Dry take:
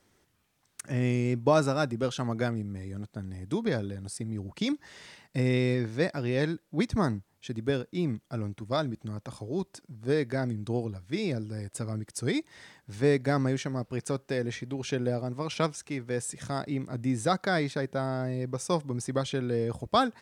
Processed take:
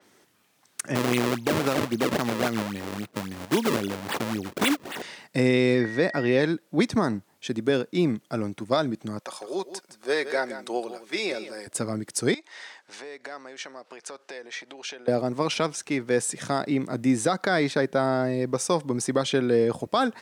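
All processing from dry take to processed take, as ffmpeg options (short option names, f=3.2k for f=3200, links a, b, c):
-filter_complex "[0:a]asettb=1/sr,asplit=3[a][b][c];[a]atrim=end=0.954[d];[b]atrim=start=0.95:end=5.02,asetpts=PTS-STARTPTS,afade=t=in:d=0.004:c=qsin,afade=t=out:st=4.066:d=0.004:c=qsin,equalizer=f=3k:t=o:w=1.2:g=12,acrusher=samples=34:mix=1:aa=0.000001:lfo=1:lforange=54.4:lforate=3.7[e];[c]atrim=start=5.016[f];[d][e]acrossfade=d=0.004:c1=hsin:c2=qsin[g];[g][f]acrossfade=d=0.004:c1=qsin:c2=hsin,asettb=1/sr,asplit=3[h][i][j];[h]atrim=end=5.814[k];[i]atrim=start=5.81:end=6.41,asetpts=PTS-STARTPTS,afade=t=in:d=0.004:c=qsin,afade=t=out:st=0.596:d=0.004:c=qsin,highshelf=f=5.5k:g=-5,aeval=exprs='val(0)+0.00708*sin(2*PI*1900*n/s)':c=same[l];[j]atrim=start=6.406[m];[k][l]acrossfade=d=0.004:c1=hsin:c2=qsin[n];[n][m]acrossfade=d=0.004:c1=qsin:c2=hsin,asettb=1/sr,asplit=3[o][p][q];[o]atrim=end=9.194[r];[p]atrim=start=9.19:end=11.67,asetpts=PTS-STARTPTS,afade=t=in:d=0.004:c=qsin,afade=t=out:st=2.476:d=0.004:c=qsin,highpass=560,aecho=1:1:5.4:0.35,atrim=end_sample=109368,aecho=1:1:164:0.251,atrim=end_sample=109368[s];[q]atrim=start=11.666[t];[r][s]acrossfade=d=0.004:c1=hsin:c2=qsin[u];[u][t]acrossfade=d=0.004:c1=qsin:c2=hsin,asettb=1/sr,asplit=3[v][w][x];[v]atrim=end=12.344[y];[w]atrim=start=12.34:end=15.08,asetpts=PTS-STARTPTS,afade=t=in:d=0.004:c=qsin,afade=t=out:st=2.736:d=0.004:c=qsin,acompressor=threshold=-37dB:ratio=12:attack=3.2:release=140:knee=1:detection=peak,highpass=600,lowpass=6.9k[z];[x]atrim=start=15.076[aa];[y][z]acrossfade=d=0.004:c1=hsin:c2=qsin[ab];[ab][aa]acrossfade=d=0.004:c1=qsin:c2=hsin,highpass=210,alimiter=limit=-20dB:level=0:latency=1:release=98,adynamicequalizer=threshold=0.00282:dfrequency=5200:dqfactor=0.7:tfrequency=5200:tqfactor=0.7:attack=5:release=100:ratio=0.375:range=2:mode=cutabove:tftype=highshelf,volume=9dB"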